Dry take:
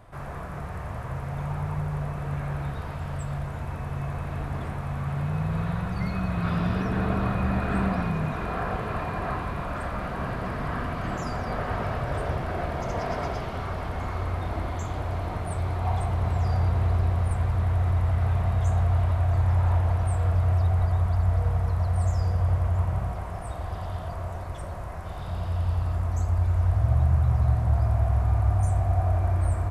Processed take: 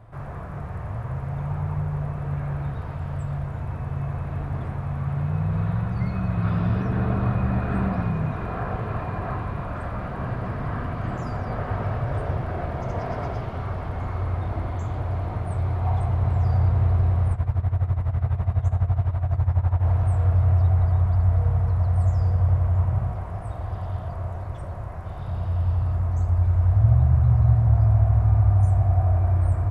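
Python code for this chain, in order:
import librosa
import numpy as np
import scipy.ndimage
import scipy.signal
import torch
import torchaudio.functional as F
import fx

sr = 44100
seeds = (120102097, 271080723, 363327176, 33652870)

y = fx.peak_eq(x, sr, hz=110.0, db=8.5, octaves=0.52)
y = fx.tremolo(y, sr, hz=12.0, depth=0.81, at=(17.33, 19.82))
y = fx.high_shelf(y, sr, hz=2800.0, db=-10.5)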